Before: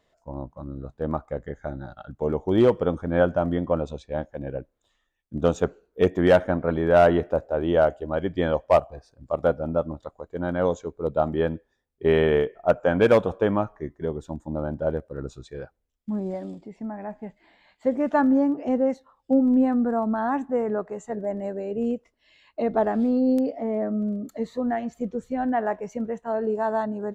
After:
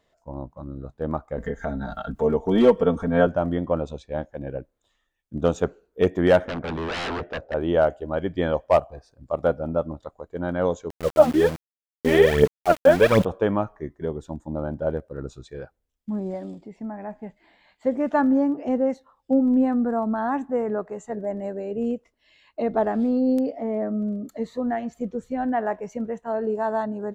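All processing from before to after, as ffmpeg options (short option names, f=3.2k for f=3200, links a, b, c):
-filter_complex "[0:a]asettb=1/sr,asplit=3[a][b][c];[a]atrim=end=1.384[d];[b]atrim=start=1.38:end=3.27,asetpts=PTS-STARTPTS,afade=t=in:d=0.004:c=qsin,afade=t=out:st=1.886:d=0.004:c=qsin,aecho=1:1:4.4:0.95,atrim=end_sample=83349,acompressor=mode=upward:threshold=-21dB:ratio=2.5:attack=3.2:release=140:knee=2.83:detection=peak[e];[c]atrim=start=3.266[f];[d][e]acrossfade=d=0.004:c1=hsin:c2=qsin[g];[g][f]acrossfade=d=0.004:c1=qsin:c2=hsin,asettb=1/sr,asplit=3[h][i][j];[h]atrim=end=6.454[k];[i]atrim=start=6.45:end=7.54,asetpts=PTS-STARTPTS,afade=t=in:d=0.004:c=qsin,afade=t=out:st=1.086:d=0.004:c=qsin,aeval=exprs='0.0668*(abs(mod(val(0)/0.0668+3,4)-2)-1)':c=same,lowpass=4.2k[l];[j]atrim=start=7.536[m];[k][l]acrossfade=d=0.004:c1=hsin:c2=qsin[n];[n][m]acrossfade=d=0.004:c1=qsin:c2=hsin,asettb=1/sr,asplit=3[o][p][q];[o]atrim=end=10.904[r];[p]atrim=start=10.9:end=13.25,asetpts=PTS-STARTPTS,afade=t=in:d=0.004:c=qsin,afade=t=out:st=2.346:d=0.004:c=qsin,equalizer=f=170:t=o:w=0.24:g=5,aphaser=in_gain=1:out_gain=1:delay=4.1:decay=0.8:speed=1.3:type=triangular,aeval=exprs='val(0)*gte(abs(val(0)),0.0335)':c=same[s];[q]atrim=start=13.246[t];[r][s]acrossfade=d=0.004:c1=hsin:c2=qsin[u];[u][t]acrossfade=d=0.004:c1=qsin:c2=hsin"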